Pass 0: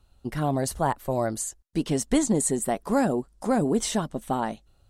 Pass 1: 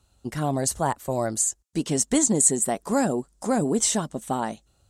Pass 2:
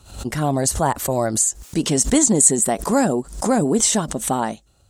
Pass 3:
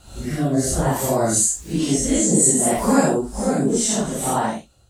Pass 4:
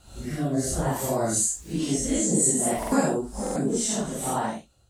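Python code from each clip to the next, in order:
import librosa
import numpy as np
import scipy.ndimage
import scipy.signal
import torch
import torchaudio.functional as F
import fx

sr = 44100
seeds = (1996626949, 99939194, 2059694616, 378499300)

y1 = scipy.signal.sosfilt(scipy.signal.butter(2, 54.0, 'highpass', fs=sr, output='sos'), x)
y1 = fx.peak_eq(y1, sr, hz=7300.0, db=10.0, octaves=0.84)
y2 = fx.pre_swell(y1, sr, db_per_s=110.0)
y2 = F.gain(torch.from_numpy(y2), 5.0).numpy()
y3 = fx.phase_scramble(y2, sr, seeds[0], window_ms=200)
y3 = fx.rotary(y3, sr, hz=0.6)
y3 = F.gain(torch.from_numpy(y3), 2.5).numpy()
y4 = fx.buffer_glitch(y3, sr, at_s=(2.78, 3.42), block=2048, repeats=2)
y4 = F.gain(torch.from_numpy(y4), -6.0).numpy()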